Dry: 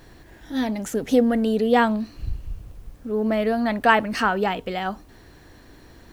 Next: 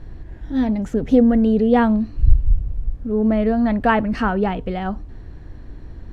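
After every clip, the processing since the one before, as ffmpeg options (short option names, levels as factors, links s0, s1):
-af "aemphasis=mode=reproduction:type=riaa,volume=0.891"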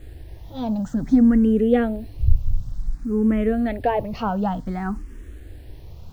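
-filter_complex "[0:a]acrossover=split=1200[s0][s1];[s1]alimiter=limit=0.075:level=0:latency=1:release=304[s2];[s0][s2]amix=inputs=2:normalize=0,acrusher=bits=8:mix=0:aa=0.000001,asplit=2[s3][s4];[s4]afreqshift=0.55[s5];[s3][s5]amix=inputs=2:normalize=1"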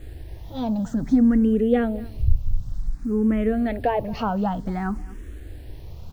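-filter_complex "[0:a]asplit=2[s0][s1];[s1]acompressor=threshold=0.0501:ratio=6,volume=0.794[s2];[s0][s2]amix=inputs=2:normalize=0,aecho=1:1:223:0.0891,volume=0.668"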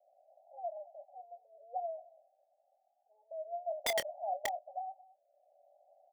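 -filter_complex "[0:a]asuperpass=centerf=670:order=12:qfactor=2.8,aeval=exprs='(mod(11.9*val(0)+1,2)-1)/11.9':c=same,asplit=2[s0][s1];[s1]adelay=26,volume=0.224[s2];[s0][s2]amix=inputs=2:normalize=0,volume=0.531"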